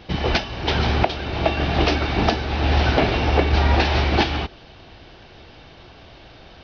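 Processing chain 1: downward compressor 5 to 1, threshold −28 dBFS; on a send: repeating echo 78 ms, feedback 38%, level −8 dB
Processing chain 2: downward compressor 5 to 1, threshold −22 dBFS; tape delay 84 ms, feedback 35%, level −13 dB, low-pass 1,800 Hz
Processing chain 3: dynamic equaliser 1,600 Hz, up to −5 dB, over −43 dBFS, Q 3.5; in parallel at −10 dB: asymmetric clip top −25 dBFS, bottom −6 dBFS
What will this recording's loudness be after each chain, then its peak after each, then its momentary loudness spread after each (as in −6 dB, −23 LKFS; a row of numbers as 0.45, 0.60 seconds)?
−31.0, −26.5, −19.0 LKFS; −15.5, −11.5, −3.0 dBFS; 14, 19, 5 LU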